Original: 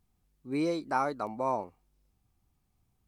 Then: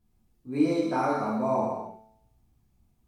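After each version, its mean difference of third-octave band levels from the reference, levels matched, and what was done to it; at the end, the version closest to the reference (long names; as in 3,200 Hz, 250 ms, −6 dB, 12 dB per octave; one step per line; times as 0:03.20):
6.5 dB: low-shelf EQ 440 Hz +6.5 dB
tuned comb filter 110 Hz, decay 0.79 s, harmonics all, mix 60%
reverb whose tail is shaped and stops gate 360 ms falling, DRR −8 dB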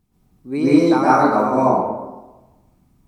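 9.0 dB: parametric band 230 Hz +8 dB 1.9 octaves
harmonic and percussive parts rebalanced percussive +6 dB
dense smooth reverb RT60 1.1 s, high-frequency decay 0.45×, pre-delay 110 ms, DRR −9 dB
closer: first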